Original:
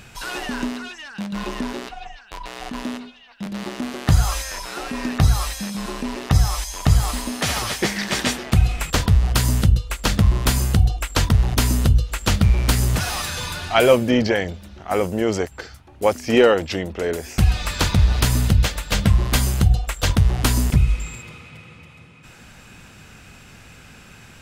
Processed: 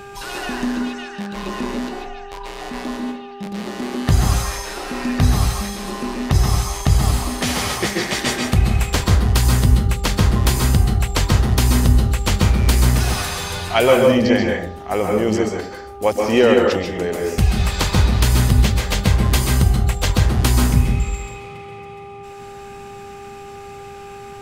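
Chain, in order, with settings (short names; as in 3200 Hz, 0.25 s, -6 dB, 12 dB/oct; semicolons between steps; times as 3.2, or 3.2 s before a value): buzz 400 Hz, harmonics 4, -37 dBFS -3 dB/oct; bell 1400 Hz -3.5 dB 0.3 oct; plate-style reverb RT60 0.54 s, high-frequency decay 0.45×, pre-delay 0.12 s, DRR 1 dB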